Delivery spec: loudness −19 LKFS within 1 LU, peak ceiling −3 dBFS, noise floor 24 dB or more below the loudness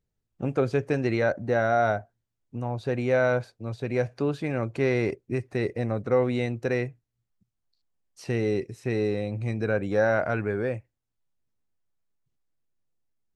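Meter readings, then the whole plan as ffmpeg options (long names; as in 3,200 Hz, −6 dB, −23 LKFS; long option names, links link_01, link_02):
integrated loudness −27.0 LKFS; sample peak −11.5 dBFS; target loudness −19.0 LKFS
→ -af "volume=8dB"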